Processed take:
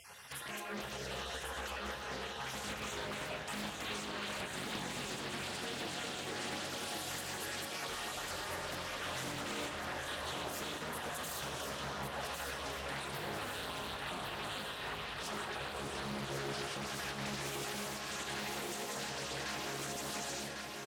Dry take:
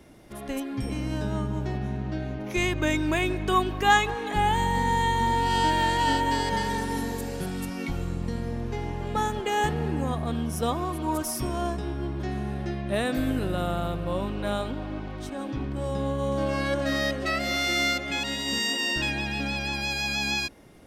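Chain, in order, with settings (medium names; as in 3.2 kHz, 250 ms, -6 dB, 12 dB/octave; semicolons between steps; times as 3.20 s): random holes in the spectrogram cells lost 21%; high-pass 270 Hz 12 dB/octave; band-stop 2.2 kHz, Q 7; spectral gate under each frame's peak -15 dB weak; compression, threshold -48 dBFS, peak gain reduction 19.5 dB; peak limiter -42.5 dBFS, peak gain reduction 7.5 dB; feedback delay 1100 ms, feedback 54%, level -5 dB; on a send at -4 dB: reverberation RT60 2.0 s, pre-delay 4 ms; on the sum: loudspeaker Doppler distortion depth 0.77 ms; trim +9.5 dB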